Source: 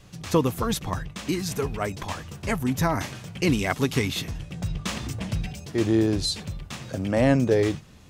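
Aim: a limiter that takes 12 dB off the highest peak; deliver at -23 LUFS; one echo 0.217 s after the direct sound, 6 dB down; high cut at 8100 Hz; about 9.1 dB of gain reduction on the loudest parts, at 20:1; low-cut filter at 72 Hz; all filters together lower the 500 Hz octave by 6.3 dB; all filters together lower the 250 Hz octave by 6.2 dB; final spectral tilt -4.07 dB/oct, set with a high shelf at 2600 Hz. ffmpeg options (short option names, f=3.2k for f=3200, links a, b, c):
-af "highpass=72,lowpass=8.1k,equalizer=f=250:t=o:g=-6.5,equalizer=f=500:t=o:g=-6,highshelf=f=2.6k:g=4.5,acompressor=threshold=-29dB:ratio=20,alimiter=level_in=4.5dB:limit=-24dB:level=0:latency=1,volume=-4.5dB,aecho=1:1:217:0.501,volume=14.5dB"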